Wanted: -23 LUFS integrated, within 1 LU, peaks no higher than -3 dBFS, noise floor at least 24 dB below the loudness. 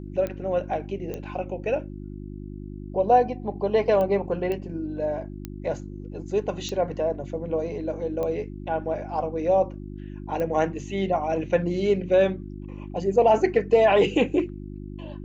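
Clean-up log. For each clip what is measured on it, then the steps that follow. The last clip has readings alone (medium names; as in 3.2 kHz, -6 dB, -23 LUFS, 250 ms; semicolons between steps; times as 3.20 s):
clicks found 8; hum 50 Hz; highest harmonic 350 Hz; hum level -35 dBFS; loudness -25.0 LUFS; peak level -8.0 dBFS; loudness target -23.0 LUFS
-> de-click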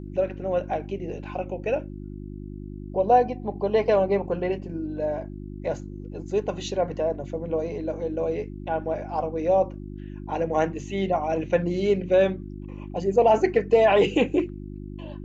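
clicks found 0; hum 50 Hz; highest harmonic 350 Hz; hum level -35 dBFS
-> de-hum 50 Hz, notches 7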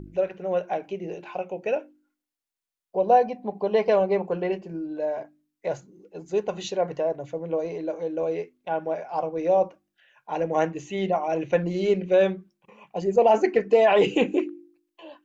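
hum not found; loudness -25.0 LUFS; peak level -8.0 dBFS; loudness target -23.0 LUFS
-> trim +2 dB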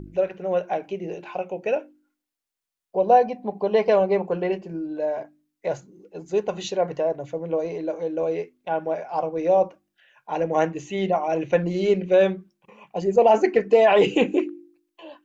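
loudness -23.0 LUFS; peak level -6.0 dBFS; noise floor -83 dBFS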